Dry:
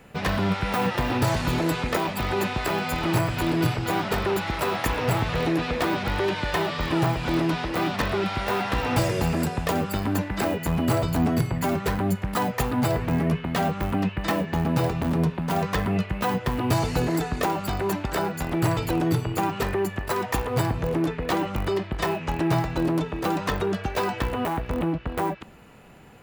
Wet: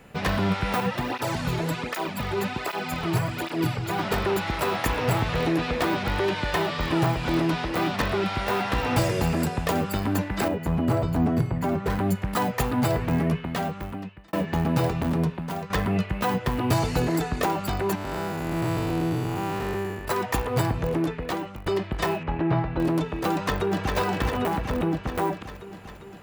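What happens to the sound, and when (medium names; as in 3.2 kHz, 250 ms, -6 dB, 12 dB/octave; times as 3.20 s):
0.80–3.99 s: cancelling through-zero flanger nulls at 1.3 Hz, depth 4.1 ms
10.48–11.90 s: treble shelf 2 kHz -11 dB
13.21–14.33 s: fade out
14.88–15.70 s: fade out equal-power, to -12 dB
17.95–20.05 s: spectral blur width 255 ms
20.73–21.66 s: fade out equal-power, to -16.5 dB
22.23–22.80 s: distance through air 400 m
23.31–23.96 s: echo throw 400 ms, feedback 70%, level -4 dB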